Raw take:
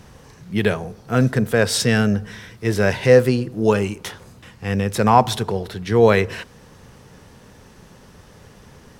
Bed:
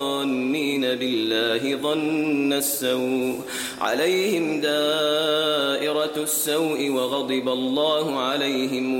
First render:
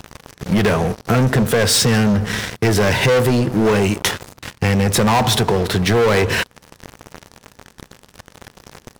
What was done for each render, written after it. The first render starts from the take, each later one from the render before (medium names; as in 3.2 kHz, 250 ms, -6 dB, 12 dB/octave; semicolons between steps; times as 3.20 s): waveshaping leveller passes 5; compression, threshold -14 dBFS, peak gain reduction 10 dB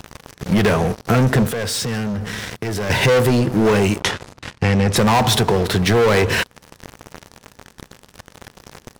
1.48–2.90 s: compression 5:1, threshold -22 dBFS; 4.00–4.96 s: distance through air 54 m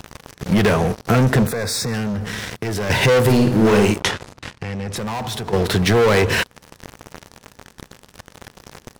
1.47–1.94 s: Butterworth band-stop 3 kHz, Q 2.8; 3.20–3.92 s: flutter echo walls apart 9.2 m, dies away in 0.5 s; 4.46–5.53 s: compression, threshold -25 dBFS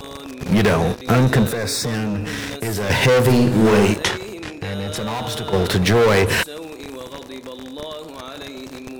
add bed -11 dB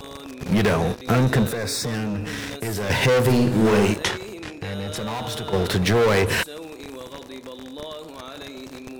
trim -3.5 dB